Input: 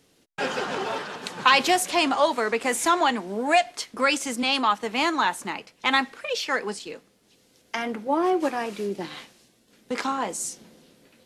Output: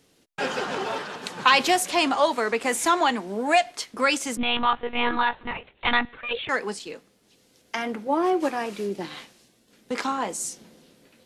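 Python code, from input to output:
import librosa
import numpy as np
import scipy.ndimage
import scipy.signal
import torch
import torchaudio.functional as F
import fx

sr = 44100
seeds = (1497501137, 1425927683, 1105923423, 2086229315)

y = fx.lpc_monotone(x, sr, seeds[0], pitch_hz=240.0, order=16, at=(4.37, 6.49))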